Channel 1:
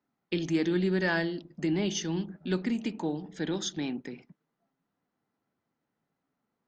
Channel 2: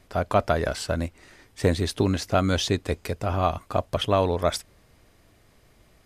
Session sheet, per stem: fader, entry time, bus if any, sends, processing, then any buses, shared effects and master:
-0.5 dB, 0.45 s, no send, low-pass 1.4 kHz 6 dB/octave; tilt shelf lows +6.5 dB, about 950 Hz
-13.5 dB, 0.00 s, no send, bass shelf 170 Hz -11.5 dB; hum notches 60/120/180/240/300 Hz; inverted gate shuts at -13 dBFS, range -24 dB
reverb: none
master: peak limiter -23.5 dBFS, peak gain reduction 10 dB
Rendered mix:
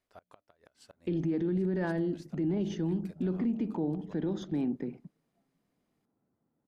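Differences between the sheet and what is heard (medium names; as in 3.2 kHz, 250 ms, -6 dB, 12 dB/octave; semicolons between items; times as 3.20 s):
stem 1: entry 0.45 s -> 0.75 s; stem 2 -13.5 dB -> -24.0 dB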